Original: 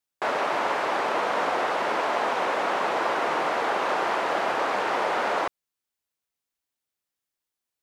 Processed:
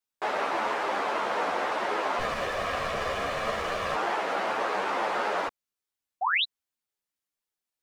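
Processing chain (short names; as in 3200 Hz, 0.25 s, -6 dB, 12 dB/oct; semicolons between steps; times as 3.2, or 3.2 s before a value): 2.19–3.95 minimum comb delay 1.7 ms; 6.21–6.44 painted sound rise 670–4200 Hz -22 dBFS; ensemble effect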